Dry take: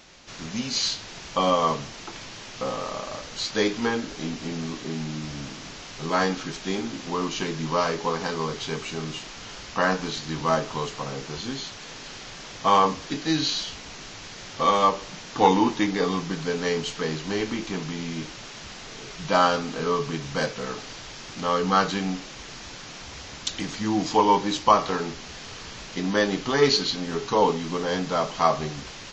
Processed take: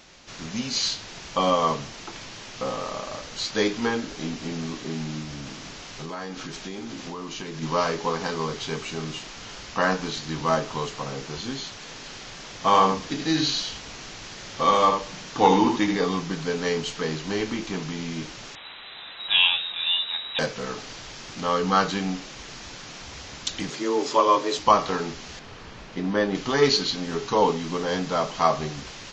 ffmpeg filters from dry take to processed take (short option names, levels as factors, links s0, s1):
-filter_complex "[0:a]asplit=3[s0][s1][s2];[s0]afade=t=out:st=5.22:d=0.02[s3];[s1]acompressor=threshold=0.0282:ratio=6:attack=3.2:release=140:knee=1:detection=peak,afade=t=in:st=5.22:d=0.02,afade=t=out:st=7.61:d=0.02[s4];[s2]afade=t=in:st=7.61:d=0.02[s5];[s3][s4][s5]amix=inputs=3:normalize=0,asettb=1/sr,asplit=3[s6][s7][s8];[s6]atrim=end=12.544[s9];[s7]atrim=start=12.54:end=15.96,asetpts=PTS-STARTPTS,afade=t=in:d=0.004:c=qsin,afade=t=out:st=3.416:d=0.004:c=qsin,aecho=1:1:78:0.473,atrim=end_sample=150822[s10];[s8]atrim=start=15.956[s11];[s9][s10]acrossfade=d=0.004:c1=hsin:c2=qsin[s12];[s12][s11]acrossfade=d=0.004:c1=qsin:c2=hsin,asettb=1/sr,asplit=3[s13][s14][s15];[s13]atrim=end=18.554[s16];[s14]atrim=start=18.55:end=20.39,asetpts=PTS-STARTPTS,afade=t=in:d=0.004:c=qsin,afade=t=out:st=1.836:d=0.004:c=qsin,lowpass=f=3400:t=q:w=0.5098,lowpass=f=3400:t=q:w=0.6013,lowpass=f=3400:t=q:w=0.9,lowpass=f=3400:t=q:w=2.563,afreqshift=-4000[s17];[s15]atrim=start=20.386[s18];[s16][s17]acrossfade=d=0.004:c1=hsin:c2=qsin[s19];[s19][s18]acrossfade=d=0.004:c1=qsin:c2=hsin,asettb=1/sr,asplit=3[s20][s21][s22];[s20]atrim=end=23.704[s23];[s21]atrim=start=23.7:end=24.59,asetpts=PTS-STARTPTS,afade=t=in:d=0.004:c=qsin,afade=t=out:st=0.886:d=0.004:c=qsin,afreqshift=120[s24];[s22]atrim=start=24.586[s25];[s23][s24]acrossfade=d=0.004:c1=hsin:c2=qsin[s26];[s26][s25]acrossfade=d=0.004:c1=qsin:c2=hsin,asettb=1/sr,asplit=3[s27][s28][s29];[s27]atrim=end=25.394[s30];[s28]atrim=start=25.39:end=26.35,asetpts=PTS-STARTPTS,afade=t=in:d=0.004:c=qsin,afade=t=out:st=0.956:d=0.004:c=qsin,lowpass=f=1700:p=1[s31];[s29]atrim=start=26.346[s32];[s30][s31]acrossfade=d=0.004:c1=hsin:c2=qsin[s33];[s33][s32]acrossfade=d=0.004:c1=qsin:c2=hsin"